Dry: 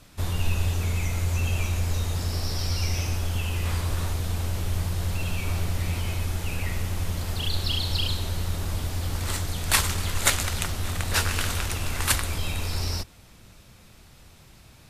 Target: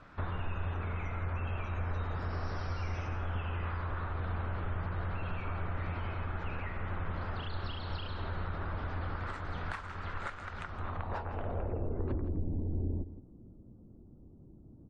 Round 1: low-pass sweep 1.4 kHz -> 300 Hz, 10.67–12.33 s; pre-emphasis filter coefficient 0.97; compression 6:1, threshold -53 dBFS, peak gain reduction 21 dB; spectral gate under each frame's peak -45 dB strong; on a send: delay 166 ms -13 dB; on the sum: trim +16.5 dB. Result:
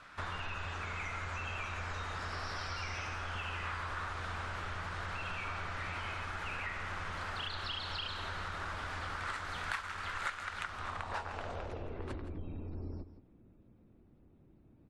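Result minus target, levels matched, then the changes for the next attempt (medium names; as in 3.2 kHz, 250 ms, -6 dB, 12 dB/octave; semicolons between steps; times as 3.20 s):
1 kHz band +3.0 dB
add after compression: tilt shelf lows +9 dB, about 910 Hz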